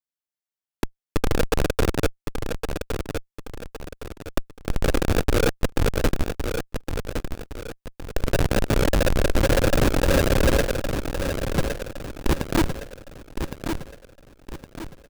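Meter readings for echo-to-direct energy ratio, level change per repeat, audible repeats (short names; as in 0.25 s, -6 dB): -6.5 dB, -8.0 dB, 4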